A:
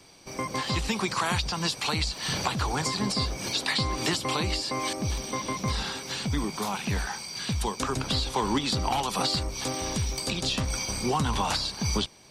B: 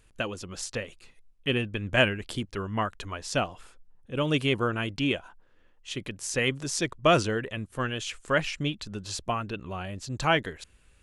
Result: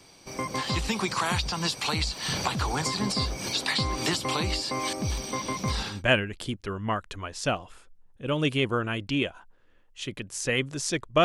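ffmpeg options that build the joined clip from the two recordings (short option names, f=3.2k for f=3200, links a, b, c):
-filter_complex "[0:a]apad=whole_dur=11.24,atrim=end=11.24,atrim=end=6.03,asetpts=PTS-STARTPTS[a];[1:a]atrim=start=1.7:end=7.13,asetpts=PTS-STARTPTS[b];[a][b]acrossfade=d=0.22:c1=tri:c2=tri"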